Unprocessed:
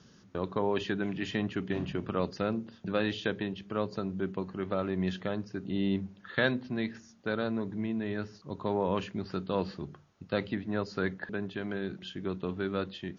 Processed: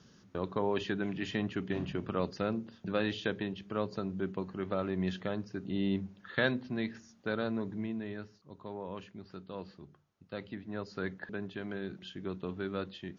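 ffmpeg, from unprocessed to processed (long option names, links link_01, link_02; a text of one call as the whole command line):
ffmpeg -i in.wav -af "volume=6dB,afade=type=out:start_time=7.68:duration=0.72:silence=0.316228,afade=type=in:start_time=10.23:duration=1.07:silence=0.398107" out.wav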